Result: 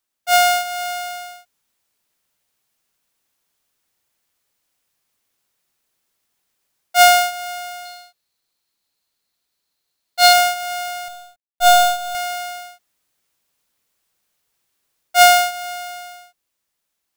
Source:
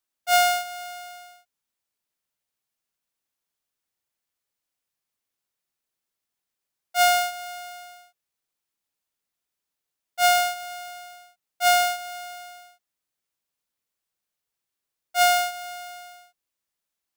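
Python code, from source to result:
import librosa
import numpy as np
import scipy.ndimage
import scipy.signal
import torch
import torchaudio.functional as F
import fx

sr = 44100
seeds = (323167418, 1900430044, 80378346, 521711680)

y = fx.dead_time(x, sr, dead_ms=0.27, at=(11.08, 12.15))
y = fx.rider(y, sr, range_db=10, speed_s=0.5)
y = fx.peak_eq(y, sr, hz=4200.0, db=12.0, octaves=0.23, at=(7.85, 10.33))
y = y * 10.0 ** (6.5 / 20.0)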